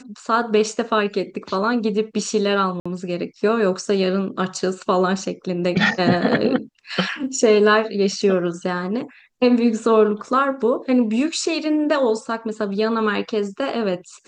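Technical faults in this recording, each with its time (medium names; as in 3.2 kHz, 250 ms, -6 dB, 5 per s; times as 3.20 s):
2.80–2.85 s: dropout 55 ms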